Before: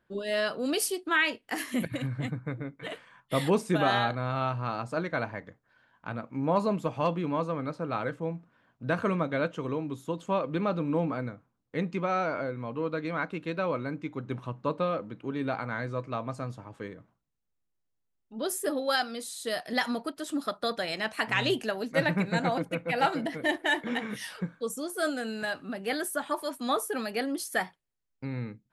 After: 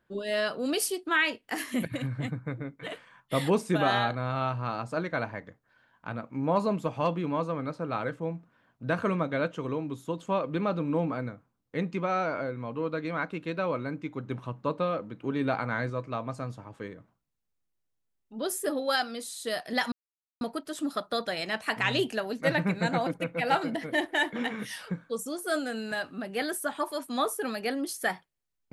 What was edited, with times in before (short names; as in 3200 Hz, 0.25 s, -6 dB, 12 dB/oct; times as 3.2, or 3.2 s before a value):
15.21–15.9 gain +3 dB
19.92 insert silence 0.49 s